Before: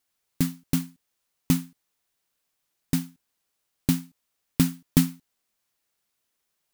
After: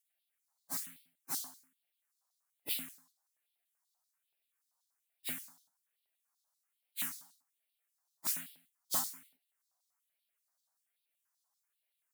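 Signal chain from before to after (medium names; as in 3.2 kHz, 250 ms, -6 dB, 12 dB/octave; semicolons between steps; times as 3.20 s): plain phase-vocoder stretch 1.8×; phase shifter stages 4, 1.2 Hz, lowest notch 390–1100 Hz; LFO high-pass square 5.2 Hz 700–3700 Hz; trim -2.5 dB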